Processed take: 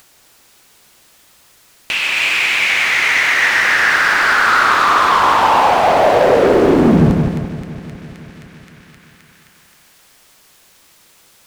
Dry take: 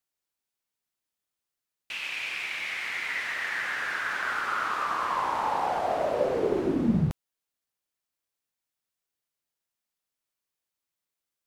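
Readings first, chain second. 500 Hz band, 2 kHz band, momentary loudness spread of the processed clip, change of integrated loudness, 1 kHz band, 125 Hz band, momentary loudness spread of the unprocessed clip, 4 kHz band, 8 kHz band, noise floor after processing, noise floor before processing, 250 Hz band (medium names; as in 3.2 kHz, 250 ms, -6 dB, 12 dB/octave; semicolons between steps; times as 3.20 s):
+16.0 dB, +18.0 dB, 9 LU, +16.5 dB, +16.5 dB, +15.0 dB, 5 LU, +19.0 dB, +19.5 dB, -50 dBFS, under -85 dBFS, +15.0 dB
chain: treble shelf 11 kHz -5.5 dB; waveshaping leveller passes 3; two-band feedback delay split 1.6 kHz, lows 170 ms, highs 262 ms, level -3.5 dB; upward compressor, threshold -27 dBFS; trim +6.5 dB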